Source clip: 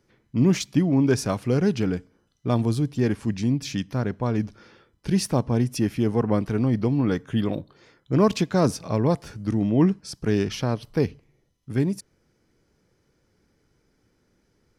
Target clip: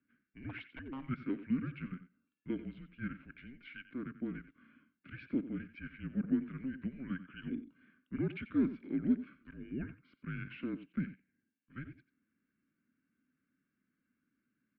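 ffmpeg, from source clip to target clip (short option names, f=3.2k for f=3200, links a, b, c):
-filter_complex "[0:a]asplit=3[a][b][c];[a]bandpass=f=530:t=q:w=8,volume=0dB[d];[b]bandpass=f=1.84k:t=q:w=8,volume=-6dB[e];[c]bandpass=f=2.48k:t=q:w=8,volume=-9dB[f];[d][e][f]amix=inputs=3:normalize=0,asettb=1/sr,asplit=3[g][h][i];[g]atrim=end=0.494[j];[h]atrim=start=0.49:end=1.05,asetpts=PTS-STARTPTS,afade=t=in:d=0.004:c=qsin,afade=t=out:st=0.556:d=0.004:c=qsin,aeval=exprs='0.0251*(abs(mod(val(0)/0.0251+3,4)-2)-1)':c=same[k];[i]atrim=start=1.046[l];[j][k]acrossfade=d=0.004:c1=hsin:c2=qsin[m];[m][l]acrossfade=d=0.004:c1=qsin:c2=hsin,highpass=f=450:t=q:w=0.5412,highpass=f=450:t=q:w=1.307,lowpass=f=3.4k:t=q:w=0.5176,lowpass=f=3.4k:t=q:w=0.7071,lowpass=f=3.4k:t=q:w=1.932,afreqshift=-270,aecho=1:1:90:0.2"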